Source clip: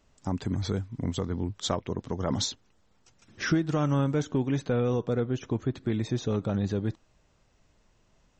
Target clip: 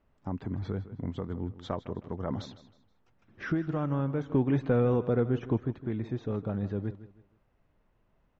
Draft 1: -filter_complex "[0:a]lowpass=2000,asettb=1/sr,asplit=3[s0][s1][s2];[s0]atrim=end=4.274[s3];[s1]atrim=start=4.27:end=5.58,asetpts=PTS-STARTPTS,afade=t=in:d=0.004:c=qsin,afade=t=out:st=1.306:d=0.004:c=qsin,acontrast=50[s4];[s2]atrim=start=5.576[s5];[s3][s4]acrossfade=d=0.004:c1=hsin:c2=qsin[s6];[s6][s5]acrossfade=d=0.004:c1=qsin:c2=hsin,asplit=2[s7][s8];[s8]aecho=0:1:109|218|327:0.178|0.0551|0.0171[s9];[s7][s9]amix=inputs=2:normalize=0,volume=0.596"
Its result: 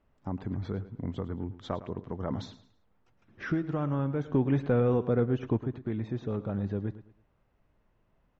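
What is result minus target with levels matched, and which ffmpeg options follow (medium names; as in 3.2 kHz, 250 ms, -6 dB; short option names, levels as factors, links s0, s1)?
echo 49 ms early
-filter_complex "[0:a]lowpass=2000,asettb=1/sr,asplit=3[s0][s1][s2];[s0]atrim=end=4.274[s3];[s1]atrim=start=4.27:end=5.58,asetpts=PTS-STARTPTS,afade=t=in:d=0.004:c=qsin,afade=t=out:st=1.306:d=0.004:c=qsin,acontrast=50[s4];[s2]atrim=start=5.576[s5];[s3][s4]acrossfade=d=0.004:c1=hsin:c2=qsin[s6];[s6][s5]acrossfade=d=0.004:c1=qsin:c2=hsin,asplit=2[s7][s8];[s8]aecho=0:1:158|316|474:0.178|0.0551|0.0171[s9];[s7][s9]amix=inputs=2:normalize=0,volume=0.596"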